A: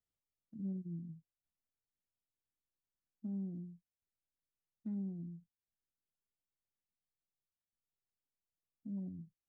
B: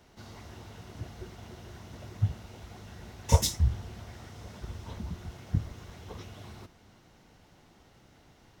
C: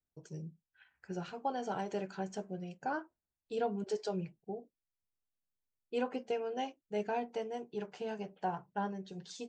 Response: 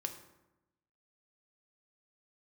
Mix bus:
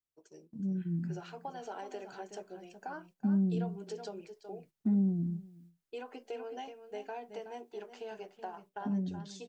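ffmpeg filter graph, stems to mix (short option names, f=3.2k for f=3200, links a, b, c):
-filter_complex "[0:a]dynaudnorm=f=240:g=7:m=11dB,volume=1dB,asplit=2[a][b];[b]volume=-22.5dB[c];[2:a]volume=-1.5dB,asplit=2[d][e];[e]volume=-13.5dB[f];[d]highpass=f=290:w=0.5412,highpass=f=290:w=1.3066,acompressor=threshold=-38dB:ratio=6,volume=0dB[g];[c][f]amix=inputs=2:normalize=0,aecho=0:1:373:1[h];[a][g][h]amix=inputs=3:normalize=0,agate=range=-8dB:threshold=-57dB:ratio=16:detection=peak,bandreject=f=520:w=12"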